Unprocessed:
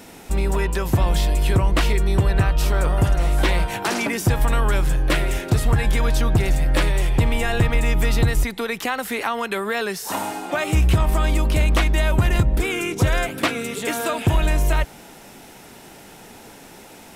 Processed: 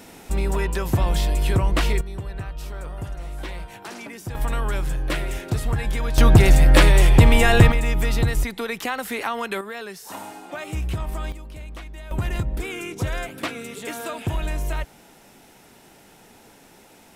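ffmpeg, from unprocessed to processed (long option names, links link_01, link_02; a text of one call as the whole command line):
ffmpeg -i in.wav -af "asetnsamples=nb_out_samples=441:pad=0,asendcmd='2.01 volume volume -14dB;4.35 volume volume -5.5dB;6.18 volume volume 6dB;7.72 volume volume -2.5dB;9.61 volume volume -10dB;11.32 volume volume -19.5dB;12.11 volume volume -7.5dB',volume=-2dB" out.wav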